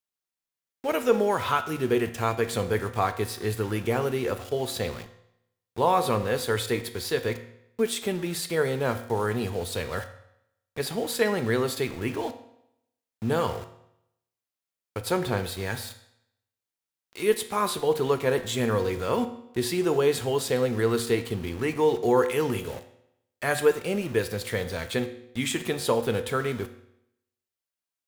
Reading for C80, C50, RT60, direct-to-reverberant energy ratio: 14.5 dB, 12.0 dB, 0.80 s, 8.0 dB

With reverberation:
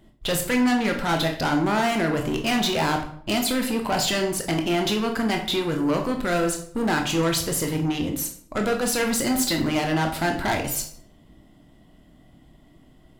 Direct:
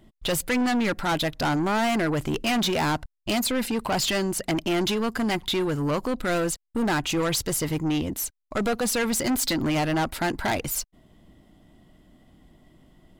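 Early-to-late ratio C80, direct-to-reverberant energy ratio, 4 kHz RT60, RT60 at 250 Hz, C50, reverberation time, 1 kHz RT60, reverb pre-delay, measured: 11.5 dB, 3.0 dB, 0.45 s, 0.80 s, 8.5 dB, 0.60 s, 0.55 s, 16 ms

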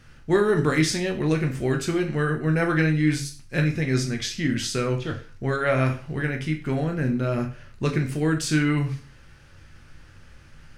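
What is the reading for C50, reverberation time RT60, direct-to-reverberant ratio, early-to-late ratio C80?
11.0 dB, 0.40 s, 3.0 dB, 16.0 dB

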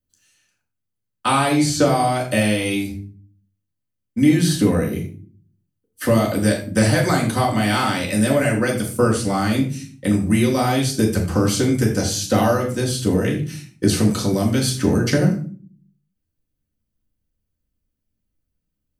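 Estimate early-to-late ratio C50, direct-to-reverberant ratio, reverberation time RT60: 8.0 dB, -3.0 dB, 0.45 s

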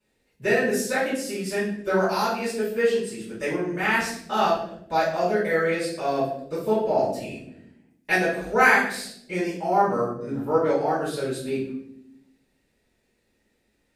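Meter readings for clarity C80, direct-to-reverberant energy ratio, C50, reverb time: 7.5 dB, -11.0 dB, 2.5 dB, 0.75 s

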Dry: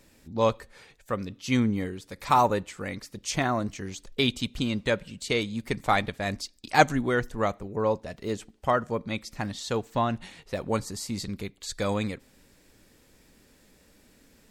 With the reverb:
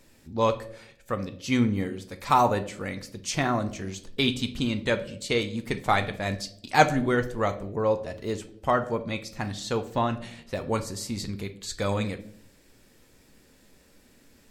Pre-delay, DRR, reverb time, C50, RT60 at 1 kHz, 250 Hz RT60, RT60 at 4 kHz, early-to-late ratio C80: 8 ms, 7.5 dB, 0.65 s, 14.0 dB, 0.50 s, 0.80 s, 0.45 s, 18.5 dB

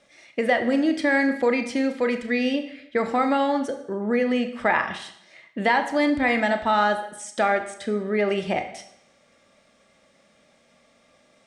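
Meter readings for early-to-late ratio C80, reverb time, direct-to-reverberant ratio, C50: 13.0 dB, 0.75 s, 7.0 dB, 10.5 dB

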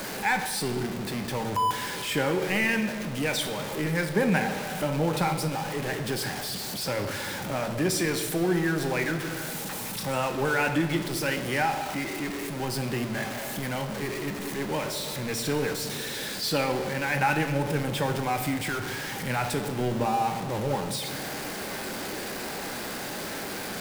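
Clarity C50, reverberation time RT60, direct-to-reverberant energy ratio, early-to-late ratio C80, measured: 8.0 dB, 2.0 s, 5.5 dB, 10.0 dB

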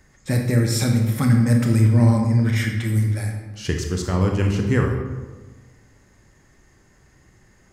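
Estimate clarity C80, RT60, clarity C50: 6.5 dB, 1.3 s, 4.5 dB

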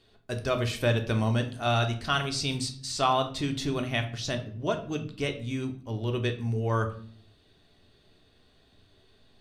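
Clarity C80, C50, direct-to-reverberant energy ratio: 16.0 dB, 12.0 dB, 4.5 dB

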